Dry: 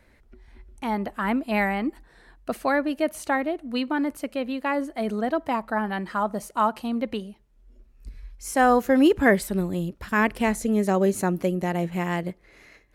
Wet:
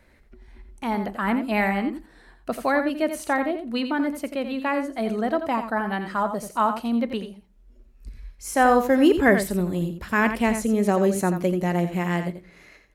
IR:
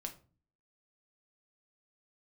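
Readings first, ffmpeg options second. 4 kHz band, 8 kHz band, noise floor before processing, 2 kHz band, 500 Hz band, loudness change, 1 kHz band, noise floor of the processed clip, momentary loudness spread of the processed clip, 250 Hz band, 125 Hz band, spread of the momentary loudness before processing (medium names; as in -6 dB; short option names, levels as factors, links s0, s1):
+1.0 dB, +1.0 dB, -59 dBFS, +1.5 dB, +1.5 dB, +1.5 dB, +1.0 dB, -55 dBFS, 11 LU, +1.5 dB, +2.0 dB, 11 LU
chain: -filter_complex "[0:a]aecho=1:1:86:0.355,asplit=2[s0][s1];[1:a]atrim=start_sample=2205[s2];[s1][s2]afir=irnorm=-1:irlink=0,volume=0.447[s3];[s0][s3]amix=inputs=2:normalize=0,volume=0.841"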